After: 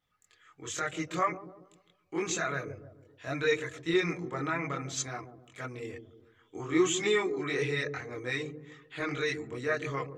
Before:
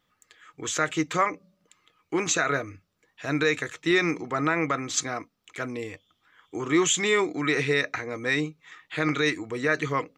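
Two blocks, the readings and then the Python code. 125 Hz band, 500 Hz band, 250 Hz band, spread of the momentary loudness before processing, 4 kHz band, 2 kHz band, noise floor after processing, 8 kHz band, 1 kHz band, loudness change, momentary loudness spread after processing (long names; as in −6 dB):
−4.5 dB, −4.0 dB, −6.5 dB, 13 LU, −7.0 dB, −7.5 dB, −71 dBFS, −8.0 dB, −6.5 dB, −6.0 dB, 16 LU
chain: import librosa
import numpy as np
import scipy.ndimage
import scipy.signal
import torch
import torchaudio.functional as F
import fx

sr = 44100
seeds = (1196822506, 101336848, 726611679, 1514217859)

y = fx.echo_wet_lowpass(x, sr, ms=144, feedback_pct=43, hz=510.0, wet_db=-7.0)
y = fx.chorus_voices(y, sr, voices=6, hz=0.59, base_ms=23, depth_ms=1.5, mix_pct=55)
y = y * 10.0 ** (-4.5 / 20.0)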